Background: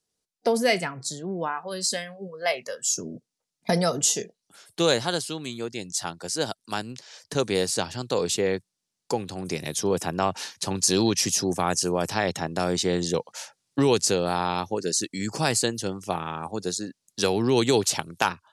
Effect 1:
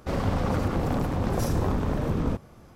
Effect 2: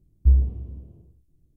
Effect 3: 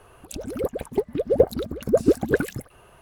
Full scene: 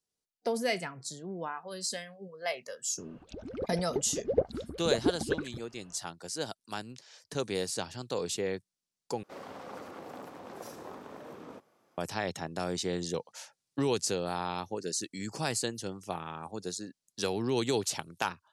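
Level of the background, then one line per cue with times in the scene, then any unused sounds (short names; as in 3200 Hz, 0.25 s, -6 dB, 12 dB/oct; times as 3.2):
background -8.5 dB
2.98 add 3 -10 dB + LPF 5300 Hz 24 dB/oct
9.23 replace with 1 -13 dB + HPF 370 Hz
not used: 2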